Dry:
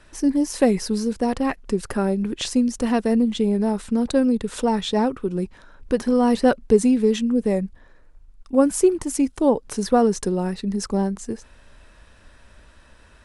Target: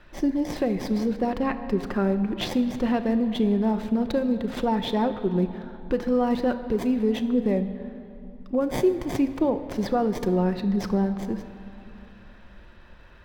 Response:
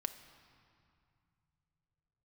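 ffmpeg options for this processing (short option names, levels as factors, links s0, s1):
-filter_complex "[0:a]acrossover=split=4600[s0][s1];[s0]alimiter=limit=0.2:level=0:latency=1:release=467[s2];[s1]acrusher=samples=32:mix=1:aa=0.000001[s3];[s2][s3]amix=inputs=2:normalize=0[s4];[1:a]atrim=start_sample=2205,asetrate=37044,aresample=44100[s5];[s4][s5]afir=irnorm=-1:irlink=0"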